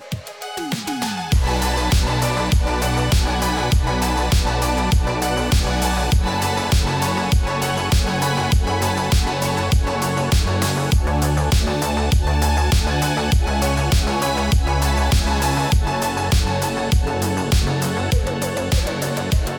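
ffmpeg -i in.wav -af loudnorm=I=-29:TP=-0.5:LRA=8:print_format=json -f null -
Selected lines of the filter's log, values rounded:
"input_i" : "-19.6",
"input_tp" : "-7.8",
"input_lra" : "2.0",
"input_thresh" : "-29.6",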